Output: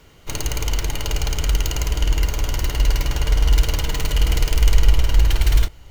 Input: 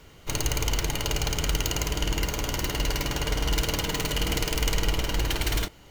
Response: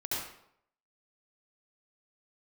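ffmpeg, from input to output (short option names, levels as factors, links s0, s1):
-af "asubboost=boost=5.5:cutoff=89,volume=1.12"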